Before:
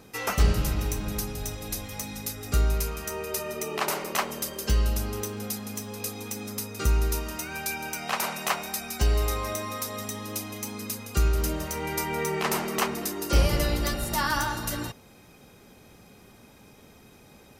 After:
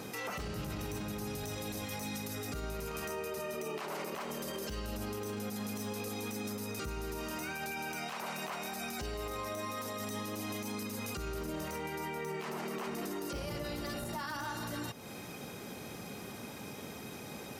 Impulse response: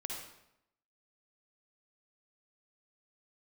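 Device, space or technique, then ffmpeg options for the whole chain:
podcast mastering chain: -af "highpass=110,deesser=0.7,acompressor=threshold=-42dB:ratio=6,alimiter=level_in=14.5dB:limit=-24dB:level=0:latency=1:release=28,volume=-14.5dB,volume=8.5dB" -ar 48000 -c:a libmp3lame -b:a 112k

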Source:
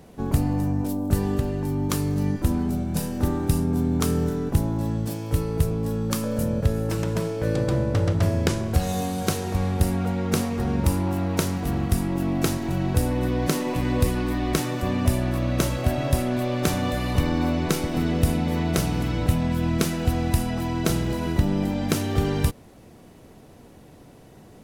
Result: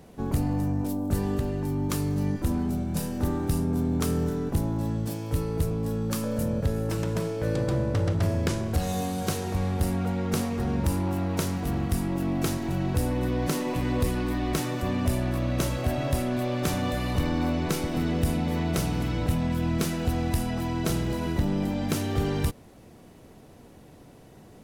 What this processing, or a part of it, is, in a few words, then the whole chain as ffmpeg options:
saturation between pre-emphasis and de-emphasis: -af "highshelf=f=7.1k:g=10.5,asoftclip=type=tanh:threshold=-14dB,highshelf=f=7.1k:g=-10.5,volume=-2dB"

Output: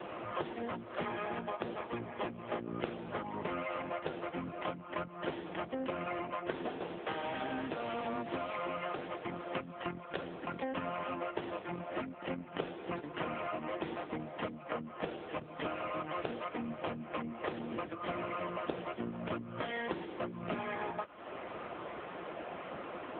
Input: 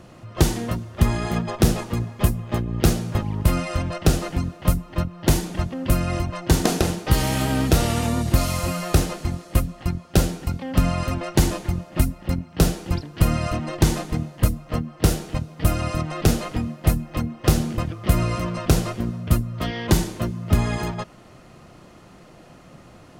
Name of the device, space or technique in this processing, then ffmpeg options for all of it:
voicemail: -af "highpass=380,lowpass=3k,acompressor=threshold=-44dB:ratio=8,volume=10.5dB" -ar 8000 -c:a libopencore_amrnb -b:a 6700

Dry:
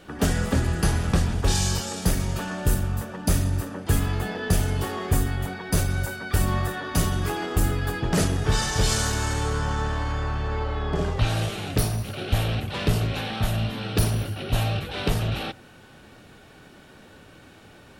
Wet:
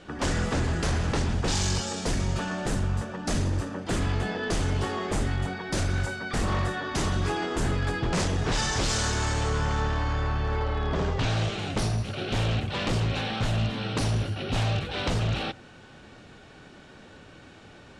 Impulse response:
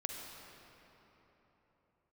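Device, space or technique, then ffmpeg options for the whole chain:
synthesiser wavefolder: -filter_complex "[0:a]asettb=1/sr,asplit=3[a][b][c];[a]atrim=end=9.804[d];[b]atrim=start=9.8:end=11.59,asetpts=PTS-STARTPTS,afade=t=in:d=0.004:c=qsin,afade=t=out:st=1.786:d=0.004:c=qsin,lowpass=7.2k[e];[c]atrim=start=11.586[f];[d][e]acrossfade=d=0.004:c1=hsin:c2=qsin[g];[g][f]acrossfade=d=0.004:c1=qsin:c2=hsin,aeval=exprs='0.1*(abs(mod(val(0)/0.1+3,4)-2)-1)':c=same,lowpass=f=7.9k:w=0.5412,lowpass=f=7.9k:w=1.3066"

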